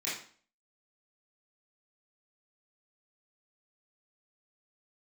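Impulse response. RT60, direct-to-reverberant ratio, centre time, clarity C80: 0.45 s, -10.5 dB, 44 ms, 8.5 dB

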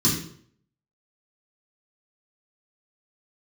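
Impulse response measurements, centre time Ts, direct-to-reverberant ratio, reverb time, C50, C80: 36 ms, -7.0 dB, 0.60 s, 5.0 dB, 8.0 dB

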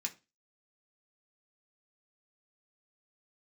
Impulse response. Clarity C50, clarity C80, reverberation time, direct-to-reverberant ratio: 18.0 dB, 24.5 dB, 0.25 s, 0.5 dB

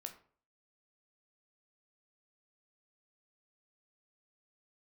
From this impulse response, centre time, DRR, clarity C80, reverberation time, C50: 12 ms, 5.0 dB, 15.5 dB, 0.45 s, 11.5 dB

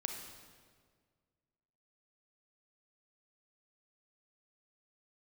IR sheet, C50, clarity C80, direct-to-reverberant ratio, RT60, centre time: 4.5 dB, 6.5 dB, 3.5 dB, 1.8 s, 44 ms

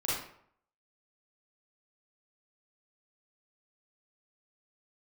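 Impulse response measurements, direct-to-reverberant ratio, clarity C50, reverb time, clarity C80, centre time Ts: -8.5 dB, -0.5 dB, 0.65 s, 5.0 dB, 64 ms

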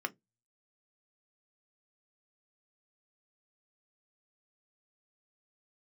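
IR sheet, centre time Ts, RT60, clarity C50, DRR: 4 ms, 0.15 s, 28.0 dB, 7.0 dB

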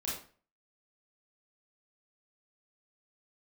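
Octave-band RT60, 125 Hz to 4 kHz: 0.45, 0.45, 0.45, 0.40, 0.40, 0.35 s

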